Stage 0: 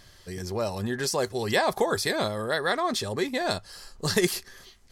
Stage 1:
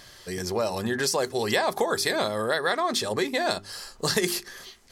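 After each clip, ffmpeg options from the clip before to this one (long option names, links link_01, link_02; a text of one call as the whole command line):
ffmpeg -i in.wav -af "lowshelf=frequency=120:gain=-12,bandreject=frequency=50:width_type=h:width=6,bandreject=frequency=100:width_type=h:width=6,bandreject=frequency=150:width_type=h:width=6,bandreject=frequency=200:width_type=h:width=6,bandreject=frequency=250:width_type=h:width=6,bandreject=frequency=300:width_type=h:width=6,bandreject=frequency=350:width_type=h:width=6,bandreject=frequency=400:width_type=h:width=6,acompressor=threshold=-30dB:ratio=2.5,volume=6.5dB" out.wav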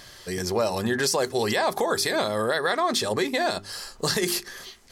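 ffmpeg -i in.wav -af "alimiter=limit=-16dB:level=0:latency=1:release=42,volume=2.5dB" out.wav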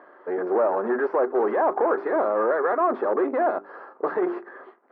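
ffmpeg -i in.wav -af "aeval=exprs='0.224*(cos(1*acos(clip(val(0)/0.224,-1,1)))-cos(1*PI/2))+0.0355*(cos(5*acos(clip(val(0)/0.224,-1,1)))-cos(5*PI/2))+0.0316*(cos(8*acos(clip(val(0)/0.224,-1,1)))-cos(8*PI/2))':channel_layout=same,aeval=exprs='sgn(val(0))*max(abs(val(0))-0.002,0)':channel_layout=same,asuperpass=centerf=640:order=8:qfactor=0.56,volume=1.5dB" out.wav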